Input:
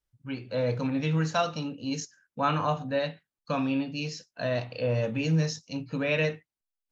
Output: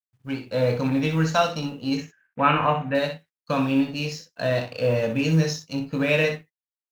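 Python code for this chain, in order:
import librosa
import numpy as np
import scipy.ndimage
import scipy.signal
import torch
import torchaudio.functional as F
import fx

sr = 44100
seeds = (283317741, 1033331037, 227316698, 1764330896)

y = fx.law_mismatch(x, sr, coded='A')
y = fx.high_shelf_res(y, sr, hz=3500.0, db=-12.5, q=3.0, at=(1.97, 2.95))
y = fx.room_early_taps(y, sr, ms=(22, 62, 74), db=(-9.5, -8.0, -18.0))
y = F.gain(torch.from_numpy(y), 5.5).numpy()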